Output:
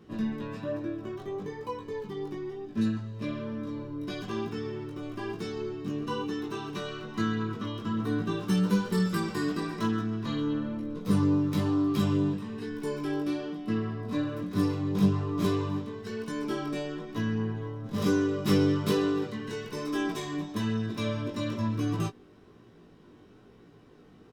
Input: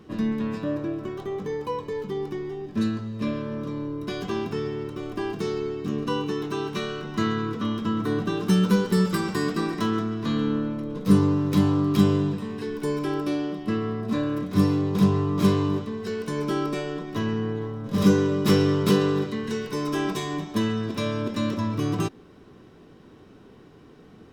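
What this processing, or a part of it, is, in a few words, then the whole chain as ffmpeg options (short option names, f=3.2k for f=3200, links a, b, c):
double-tracked vocal: -filter_complex "[0:a]asplit=2[a][b];[b]adelay=17,volume=-12dB[c];[a][c]amix=inputs=2:normalize=0,flanger=delay=17.5:depth=2.7:speed=1.1,volume=-2.5dB"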